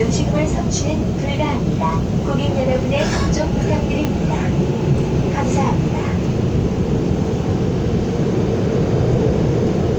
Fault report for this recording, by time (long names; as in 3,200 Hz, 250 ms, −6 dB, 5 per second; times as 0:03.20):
0:04.05: click −6 dBFS